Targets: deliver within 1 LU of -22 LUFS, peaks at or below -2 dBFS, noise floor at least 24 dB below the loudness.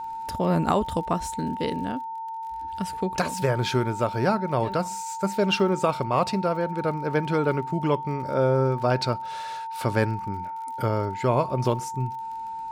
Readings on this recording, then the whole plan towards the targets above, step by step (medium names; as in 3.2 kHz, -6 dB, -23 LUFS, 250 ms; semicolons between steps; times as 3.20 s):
tick rate 39 per s; steady tone 900 Hz; tone level -31 dBFS; loudness -26.0 LUFS; peak level -8.0 dBFS; loudness target -22.0 LUFS
-> de-click; band-stop 900 Hz, Q 30; trim +4 dB